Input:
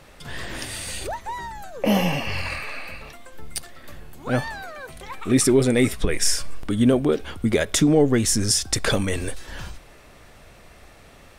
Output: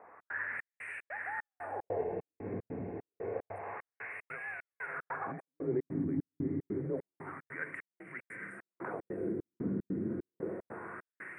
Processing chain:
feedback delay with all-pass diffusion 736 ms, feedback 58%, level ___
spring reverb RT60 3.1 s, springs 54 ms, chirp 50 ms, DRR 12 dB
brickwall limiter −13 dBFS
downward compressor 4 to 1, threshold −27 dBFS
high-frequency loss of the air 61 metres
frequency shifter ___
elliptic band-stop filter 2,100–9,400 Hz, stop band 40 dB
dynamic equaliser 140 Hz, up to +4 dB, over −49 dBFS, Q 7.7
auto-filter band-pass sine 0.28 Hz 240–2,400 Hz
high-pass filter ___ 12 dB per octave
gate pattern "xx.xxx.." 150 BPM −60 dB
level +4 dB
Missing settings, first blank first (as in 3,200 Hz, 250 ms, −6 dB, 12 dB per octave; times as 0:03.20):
−4 dB, −100 Hz, 110 Hz